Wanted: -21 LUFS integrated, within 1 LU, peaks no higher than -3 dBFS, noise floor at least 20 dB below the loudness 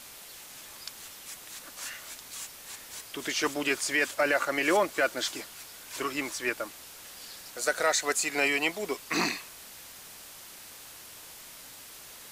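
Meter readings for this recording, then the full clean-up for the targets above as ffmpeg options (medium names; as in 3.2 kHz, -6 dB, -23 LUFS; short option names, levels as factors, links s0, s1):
noise floor -48 dBFS; noise floor target -50 dBFS; loudness -29.5 LUFS; peak level -12.5 dBFS; loudness target -21.0 LUFS
-> -af "afftdn=nr=6:nf=-48"
-af "volume=2.66"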